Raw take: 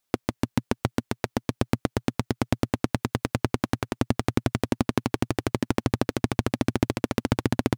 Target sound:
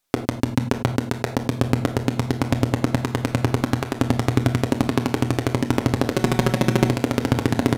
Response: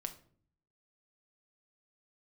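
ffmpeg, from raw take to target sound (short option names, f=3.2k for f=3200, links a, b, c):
-filter_complex "[0:a]asplit=3[a][b][c];[a]afade=t=out:st=6.13:d=0.02[d];[b]aecho=1:1:5.4:0.97,afade=t=in:st=6.13:d=0.02,afade=t=out:st=6.87:d=0.02[e];[c]afade=t=in:st=6.87:d=0.02[f];[d][e][f]amix=inputs=3:normalize=0[g];[1:a]atrim=start_sample=2205,atrim=end_sample=3528,asetrate=31752,aresample=44100[h];[g][h]afir=irnorm=-1:irlink=0,volume=4.5dB"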